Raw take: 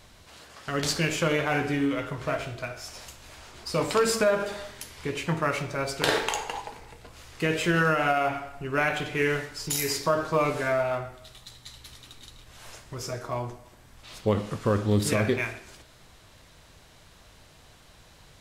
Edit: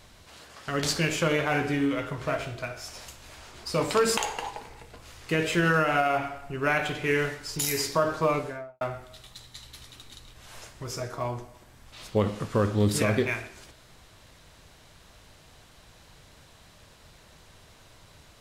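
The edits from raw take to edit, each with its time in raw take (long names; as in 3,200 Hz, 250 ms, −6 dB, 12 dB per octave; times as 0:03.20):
0:04.17–0:06.28: remove
0:10.32–0:10.92: fade out and dull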